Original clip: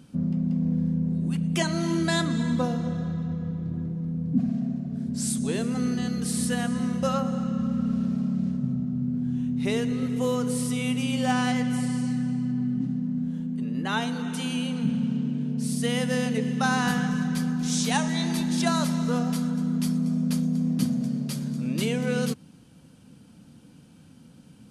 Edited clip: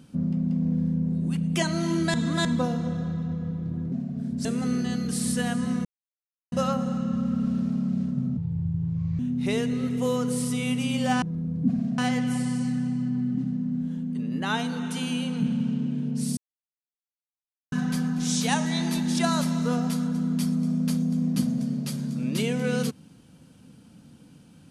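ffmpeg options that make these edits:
-filter_complex "[0:a]asplit=12[a][b][c][d][e][f][g][h][i][j][k][l];[a]atrim=end=2.142[m];[b]atrim=start=2.138:end=2.452,asetpts=PTS-STARTPTS,areverse[n];[c]atrim=start=2.448:end=3.922[o];[d]atrim=start=4.678:end=5.212[p];[e]atrim=start=5.578:end=6.98,asetpts=PTS-STARTPTS,afade=t=out:st=1.398:d=0.004:c=hsin,apad=pad_dur=0.67[q];[f]atrim=start=6.98:end=8.834,asetpts=PTS-STARTPTS,afade=t=in:d=0.004:c=hsin[r];[g]atrim=start=8.83:end=9.38,asetpts=PTS-STARTPTS,asetrate=29547,aresample=44100,atrim=end_sample=36201,asetpts=PTS-STARTPTS[s];[h]atrim=start=9.376:end=11.412[t];[i]atrim=start=3.918:end=4.682[u];[j]atrim=start=11.408:end=15.8,asetpts=PTS-STARTPTS,afade=t=out:st=4.388:d=0.004:c=hsin[v];[k]atrim=start=15.8:end=17.15,asetpts=PTS-STARTPTS,volume=0[w];[l]atrim=start=17.15,asetpts=PTS-STARTPTS,afade=t=in:d=0.004:c=hsin[x];[m][n]acrossfade=d=0.004:c1=hsin:c2=hsin[y];[y][o]acrossfade=d=0.004:c1=hsin:c2=hsin[z];[z][p]acrossfade=d=0.004:c1=hsin:c2=hsin[aa];[q][r]concat=n=2:v=0:a=1[ab];[aa][ab]acrossfade=d=0.004:c1=hsin:c2=hsin[ac];[ac][s]acrossfade=d=0.004:c1=hsin:c2=hsin[ad];[ad][t]acrossfade=d=0.004:c1=hsin:c2=hsin[ae];[ae][u]acrossfade=d=0.004:c1=hsin:c2=hsin[af];[v][w][x]concat=n=3:v=0:a=1[ag];[af][ag]acrossfade=d=0.004:c1=hsin:c2=hsin"

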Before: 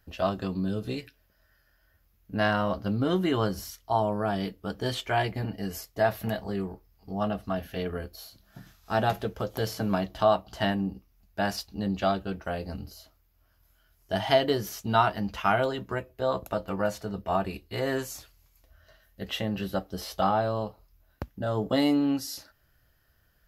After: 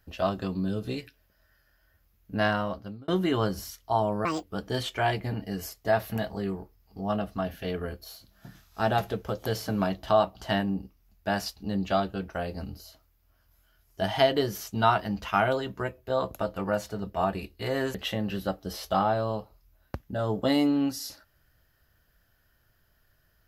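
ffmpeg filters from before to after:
-filter_complex "[0:a]asplit=5[a][b][c][d][e];[a]atrim=end=3.08,asetpts=PTS-STARTPTS,afade=t=out:st=2.46:d=0.62[f];[b]atrim=start=3.08:end=4.254,asetpts=PTS-STARTPTS,afade=t=in:d=0.004:c=hsin[g];[c]atrim=start=4.25:end=4.55,asetpts=PTS-STARTPTS,asetrate=71883,aresample=44100[h];[d]atrim=start=4.546:end=18.062[i];[e]atrim=start=19.218[j];[f][g]concat=n=2:v=0:a=1[k];[k][h]acrossfade=d=0.004:c1=hsin:c2=hsin[l];[l][i]acrossfade=d=0.004:c1=hsin:c2=hsin[m];[m][j]acrossfade=d=0.004:c1=hsin:c2=hsin"

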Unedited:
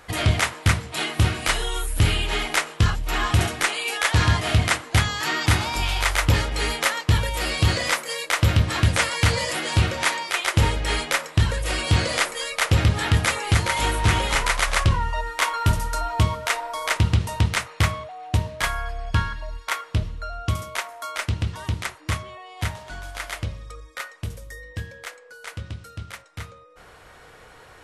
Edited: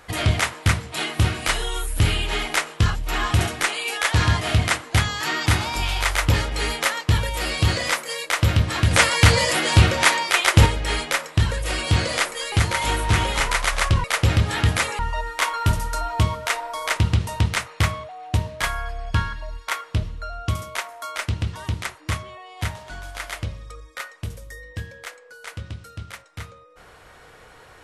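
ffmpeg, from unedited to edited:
-filter_complex "[0:a]asplit=6[a][b][c][d][e][f];[a]atrim=end=8.912[g];[b]atrim=start=8.908:end=10.662,asetpts=PTS-STARTPTS,volume=5.5dB[h];[c]atrim=start=10.658:end=12.522[i];[d]atrim=start=13.468:end=14.992[j];[e]atrim=start=12.518:end=13.472[k];[f]atrim=start=14.988[l];[g][h]acrossfade=d=0.004:c1=hsin:c2=hsin[m];[m][i]acrossfade=d=0.004:c1=hsin:c2=hsin[n];[n][j]acrossfade=d=0.004:c1=hsin:c2=hsin[o];[o][k]acrossfade=d=0.004:c1=hsin:c2=hsin[p];[p][l]acrossfade=d=0.004:c1=hsin:c2=hsin"

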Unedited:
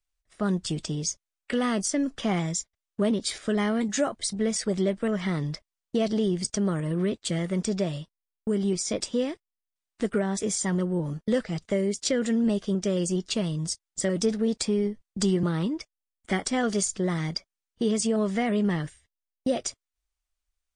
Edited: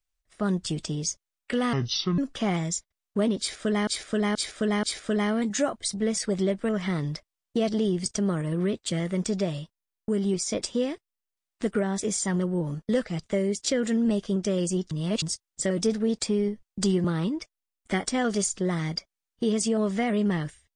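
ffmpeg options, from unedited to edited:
-filter_complex "[0:a]asplit=8[a][b][c][d][e][f][g][h];[a]atrim=end=1.734[i];[b]atrim=start=1.73:end=2.01,asetpts=PTS-STARTPTS,asetrate=27342,aresample=44100,atrim=end_sample=19916,asetpts=PTS-STARTPTS[j];[c]atrim=start=2.006:end=3.702[k];[d]atrim=start=3.218:end=3.702[l];[e]atrim=start=3.218:end=3.702[m];[f]atrim=start=3.218:end=13.302[n];[g]atrim=start=13.298:end=13.612,asetpts=PTS-STARTPTS,areverse[o];[h]atrim=start=13.608[p];[i][j]acrossfade=d=0.004:c1=hsin:c2=hsin[q];[q][k]acrossfade=d=0.004:c1=hsin:c2=hsin[r];[r][l]acrossfade=d=0.004:c1=hsin:c2=hsin[s];[s][m]acrossfade=d=0.004:c1=hsin:c2=hsin[t];[t][n]acrossfade=d=0.004:c1=hsin:c2=hsin[u];[u][o]acrossfade=d=0.004:c1=hsin:c2=hsin[v];[v][p]acrossfade=d=0.004:c1=hsin:c2=hsin"

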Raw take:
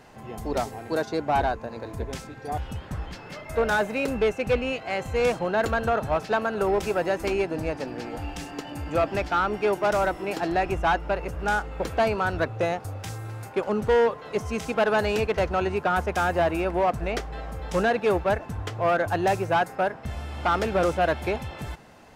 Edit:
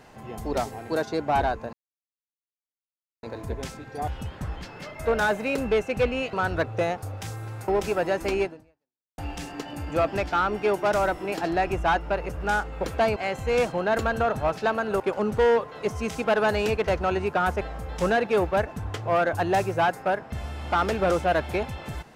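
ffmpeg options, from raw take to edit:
-filter_complex "[0:a]asplit=8[a][b][c][d][e][f][g][h];[a]atrim=end=1.73,asetpts=PTS-STARTPTS,afade=t=out:st=1.726:d=0.004:c=hsin,apad=pad_dur=1.5[i];[b]atrim=start=1.73:end=4.832,asetpts=PTS-STARTPTS,afade=t=in:d=0.004:c=hsin[j];[c]atrim=start=12.148:end=13.502[k];[d]atrim=start=6.668:end=8.17,asetpts=PTS-STARTPTS,afade=t=out:st=0.762:d=0.74:c=exp[l];[e]atrim=start=8.17:end=12.152,asetpts=PTS-STARTPTS,afade=t=in:d=0.004:c=hsin[m];[f]atrim=start=4.828:end=6.672[n];[g]atrim=start=13.498:end=16.112[o];[h]atrim=start=17.338[p];[i][j]concat=n=2:v=0:a=1[q];[q][k]acrossfade=d=0.004:c1=hsin:c2=hsin[r];[l][m]concat=n=2:v=0:a=1[s];[r][s]acrossfade=d=0.004:c1=hsin:c2=hsin[t];[t][n]acrossfade=d=0.004:c1=hsin:c2=hsin[u];[u][o]acrossfade=d=0.004:c1=hsin:c2=hsin[v];[v][p]acrossfade=d=0.004:c1=hsin:c2=hsin"

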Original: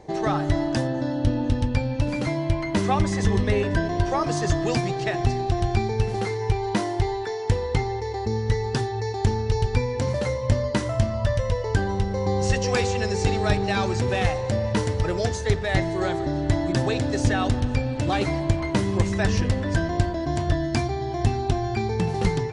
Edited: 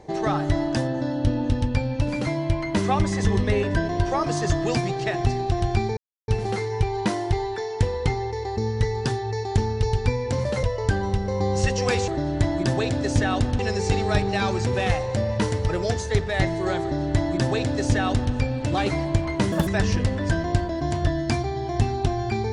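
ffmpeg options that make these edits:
-filter_complex "[0:a]asplit=7[a][b][c][d][e][f][g];[a]atrim=end=5.97,asetpts=PTS-STARTPTS,afade=t=out:st=5.966:d=0.004:c=hsin,apad=pad_dur=0.31[h];[b]atrim=start=5.97:end=10.322,asetpts=PTS-STARTPTS,afade=t=in:d=0.004:c=hsin[i];[c]atrim=start=11.488:end=12.942[j];[d]atrim=start=16.168:end=17.682[k];[e]atrim=start=12.938:end=18.874[l];[f]atrim=start=18.87:end=19.12,asetpts=PTS-STARTPTS,asetrate=73647,aresample=44100[m];[g]atrim=start=19.116[n];[h][i]concat=n=2:v=0:a=1[o];[o][j]acrossfade=d=0.004:c1=hsin:c2=hsin[p];[p][k]acrossfade=d=0.004:c1=hsin:c2=hsin[q];[q][l]acrossfade=d=0.004:c1=hsin:c2=hsin[r];[r][m]acrossfade=d=0.004:c1=hsin:c2=hsin[s];[s][n]acrossfade=d=0.004:c1=hsin:c2=hsin"

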